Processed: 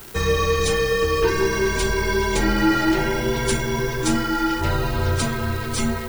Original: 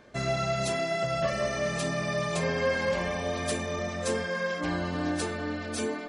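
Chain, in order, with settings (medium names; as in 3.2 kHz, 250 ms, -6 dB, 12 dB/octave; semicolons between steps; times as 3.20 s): frequency shift -210 Hz; crackle 430 per s -38 dBFS; added noise violet -53 dBFS; trim +9 dB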